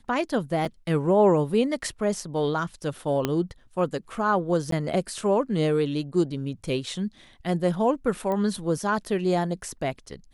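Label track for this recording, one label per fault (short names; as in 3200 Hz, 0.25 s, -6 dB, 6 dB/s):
0.650000	0.650000	gap 4.7 ms
3.250000	3.250000	pop -10 dBFS
4.710000	4.720000	gap
8.320000	8.320000	pop -18 dBFS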